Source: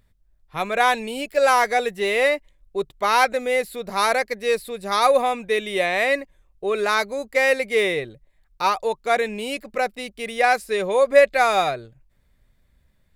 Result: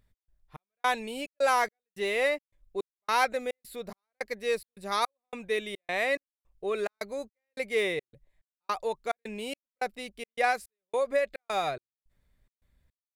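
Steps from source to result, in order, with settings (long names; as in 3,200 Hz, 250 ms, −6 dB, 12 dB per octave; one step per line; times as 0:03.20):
0:10.50–0:11.64: downward compressor 3 to 1, threshold −17 dBFS, peak gain reduction 7.5 dB
gate pattern "x.xx..xx" 107 BPM −60 dB
level −7.5 dB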